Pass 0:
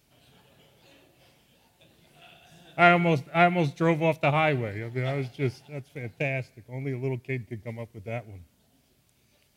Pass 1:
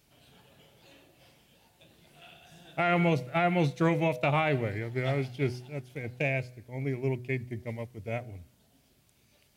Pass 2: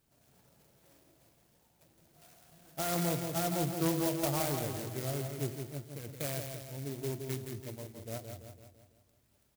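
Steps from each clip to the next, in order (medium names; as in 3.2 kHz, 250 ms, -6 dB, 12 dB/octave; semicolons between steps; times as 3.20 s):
de-hum 124.1 Hz, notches 6; peak limiter -16.5 dBFS, peak gain reduction 11.5 dB
feedback comb 330 Hz, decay 0.79 s, mix 60%; on a send: feedback delay 167 ms, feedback 52%, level -6 dB; on the sum: sampling jitter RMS 0.12 ms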